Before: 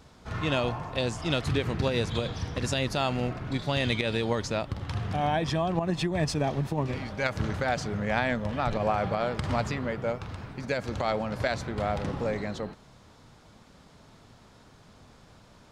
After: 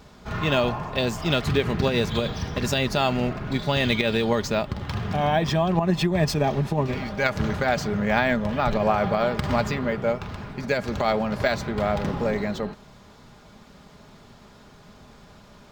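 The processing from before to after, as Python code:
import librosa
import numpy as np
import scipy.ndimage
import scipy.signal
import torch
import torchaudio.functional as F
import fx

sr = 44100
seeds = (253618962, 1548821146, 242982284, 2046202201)

y = x + 0.36 * np.pad(x, (int(4.9 * sr / 1000.0), 0))[:len(x)]
y = np.interp(np.arange(len(y)), np.arange(len(y))[::2], y[::2])
y = y * 10.0 ** (5.0 / 20.0)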